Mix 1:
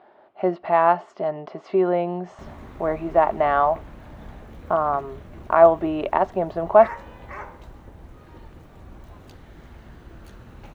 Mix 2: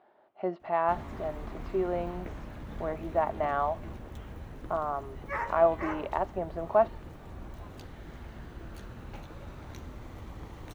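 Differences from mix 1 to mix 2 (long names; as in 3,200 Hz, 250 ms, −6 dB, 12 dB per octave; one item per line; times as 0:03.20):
speech −10.0 dB
background: entry −1.50 s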